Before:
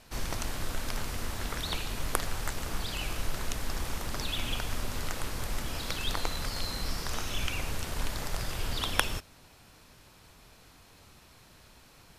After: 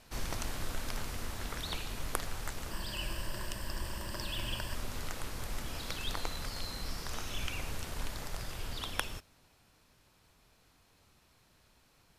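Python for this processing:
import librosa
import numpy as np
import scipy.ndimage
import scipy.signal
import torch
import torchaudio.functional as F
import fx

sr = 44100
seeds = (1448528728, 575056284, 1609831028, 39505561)

y = fx.ripple_eq(x, sr, per_octave=1.3, db=10, at=(2.71, 4.75))
y = fx.rider(y, sr, range_db=10, speed_s=2.0)
y = y * librosa.db_to_amplitude(-5.5)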